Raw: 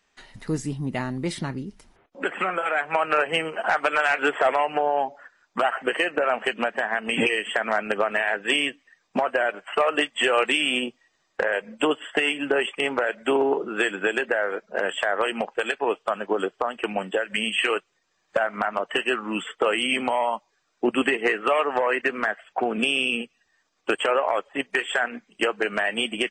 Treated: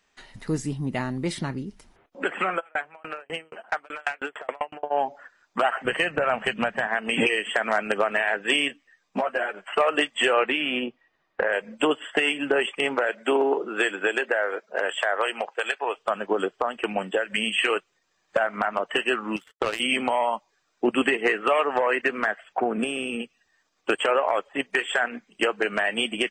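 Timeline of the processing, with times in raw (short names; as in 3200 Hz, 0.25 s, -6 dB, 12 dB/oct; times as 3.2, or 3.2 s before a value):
2.59–4.9 dB-ramp tremolo decaying 2.9 Hz -> 9.9 Hz, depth 37 dB
5.85–6.87 resonant low shelf 210 Hz +11.5 dB, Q 1.5
7.55–8.1 high shelf 7000 Hz +8.5 dB
8.68–9.66 ensemble effect
10.33–11.5 LPF 2500 Hz
12.95–15.96 HPF 190 Hz -> 600 Hz
19.36–19.8 power-law curve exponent 2
22.6–23.2 band shelf 4100 Hz -10 dB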